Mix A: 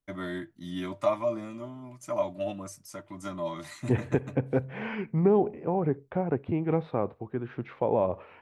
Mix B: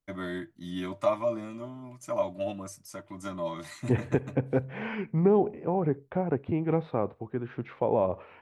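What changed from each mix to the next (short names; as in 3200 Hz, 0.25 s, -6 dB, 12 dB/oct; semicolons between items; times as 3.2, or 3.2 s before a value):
none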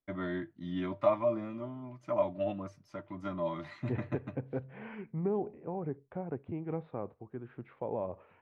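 second voice -9.5 dB; master: add air absorption 310 m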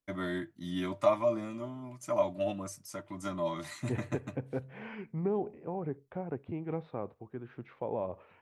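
master: remove air absorption 310 m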